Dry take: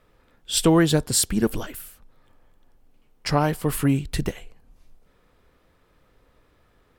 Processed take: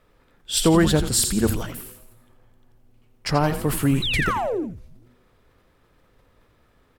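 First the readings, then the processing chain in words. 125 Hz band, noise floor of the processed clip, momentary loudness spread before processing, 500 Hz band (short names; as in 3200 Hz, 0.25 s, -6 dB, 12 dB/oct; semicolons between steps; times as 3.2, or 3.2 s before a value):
+1.0 dB, -61 dBFS, 15 LU, +1.0 dB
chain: painted sound fall, 4.02–4.64, 280–4100 Hz -25 dBFS; frequency-shifting echo 84 ms, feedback 49%, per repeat -130 Hz, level -10 dB; sustainer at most 93 dB/s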